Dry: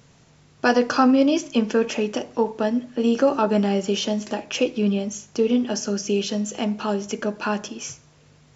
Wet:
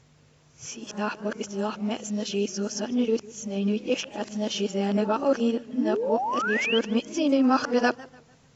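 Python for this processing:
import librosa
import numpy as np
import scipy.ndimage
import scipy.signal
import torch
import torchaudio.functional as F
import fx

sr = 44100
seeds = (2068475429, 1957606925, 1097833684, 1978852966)

y = np.flip(x).copy()
y = fx.spec_paint(y, sr, seeds[0], shape='rise', start_s=5.73, length_s=1.06, low_hz=230.0, high_hz=3300.0, level_db=-23.0)
y = fx.echo_warbled(y, sr, ms=148, feedback_pct=37, rate_hz=2.8, cents=143, wet_db=-21)
y = F.gain(torch.from_numpy(y), -4.5).numpy()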